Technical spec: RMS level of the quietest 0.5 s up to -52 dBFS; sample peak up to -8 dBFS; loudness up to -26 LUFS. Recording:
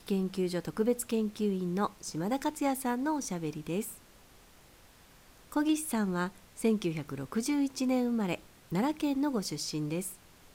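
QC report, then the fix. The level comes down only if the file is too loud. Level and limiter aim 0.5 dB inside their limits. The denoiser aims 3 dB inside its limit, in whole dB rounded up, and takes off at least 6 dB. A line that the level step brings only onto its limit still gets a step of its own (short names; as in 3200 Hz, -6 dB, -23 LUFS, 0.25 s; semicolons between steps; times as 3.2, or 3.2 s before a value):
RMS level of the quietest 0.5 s -58 dBFS: OK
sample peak -16.0 dBFS: OK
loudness -32.5 LUFS: OK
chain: none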